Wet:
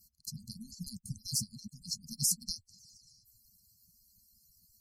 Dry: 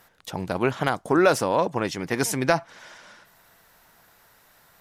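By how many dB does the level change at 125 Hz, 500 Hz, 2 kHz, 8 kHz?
-12.0 dB, under -40 dB, under -40 dB, 0.0 dB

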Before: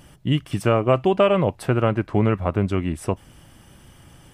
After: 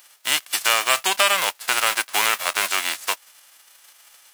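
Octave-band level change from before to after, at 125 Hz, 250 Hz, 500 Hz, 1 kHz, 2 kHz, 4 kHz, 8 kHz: under -30 dB, -21.5 dB, -11.0 dB, +3.0 dB, +12.0 dB, +14.5 dB, +21.0 dB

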